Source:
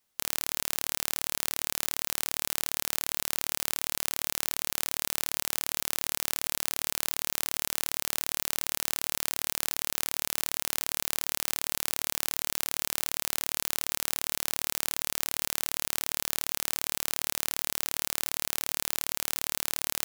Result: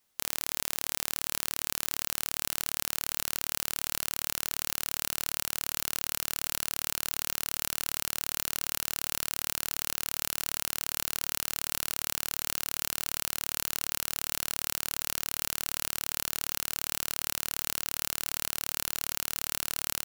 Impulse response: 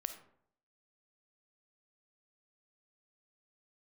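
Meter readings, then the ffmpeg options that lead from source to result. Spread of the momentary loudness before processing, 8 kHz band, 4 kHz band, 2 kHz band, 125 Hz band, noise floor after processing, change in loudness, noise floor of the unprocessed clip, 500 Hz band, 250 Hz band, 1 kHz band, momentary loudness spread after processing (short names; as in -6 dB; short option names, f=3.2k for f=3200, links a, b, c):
0 LU, -1.0 dB, -1.0 dB, -1.0 dB, +0.5 dB, -74 dBFS, -1.0 dB, -76 dBFS, -2.5 dB, -1.5 dB, -1.5 dB, 0 LU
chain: -filter_complex "[0:a]acontrast=31,asplit=2[a][b];[b]aecho=0:1:912|1824|2736|3648|4560|5472:0.251|0.138|0.076|0.0418|0.023|0.0126[c];[a][c]amix=inputs=2:normalize=0,volume=-3dB"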